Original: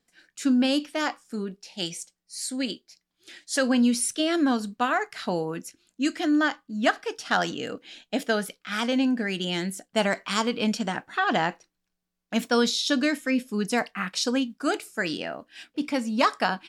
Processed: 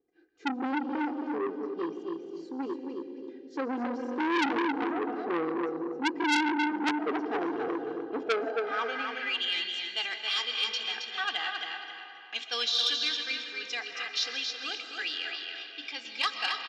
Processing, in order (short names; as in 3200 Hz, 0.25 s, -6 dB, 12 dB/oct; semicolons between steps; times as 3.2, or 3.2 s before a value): steep low-pass 6700 Hz 48 dB/oct; low shelf 110 Hz +8 dB; notches 50/100/150/200/250 Hz; comb 2.5 ms, depth 77%; in parallel at -2.5 dB: level quantiser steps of 19 dB; on the sum: digital reverb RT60 3.1 s, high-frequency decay 0.6×, pre-delay 85 ms, DRR 6.5 dB; band-pass sweep 360 Hz -> 3300 Hz, 8.14–9.39; on a send: feedback echo 0.271 s, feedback 30%, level -5 dB; on the sum: core saturation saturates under 3000 Hz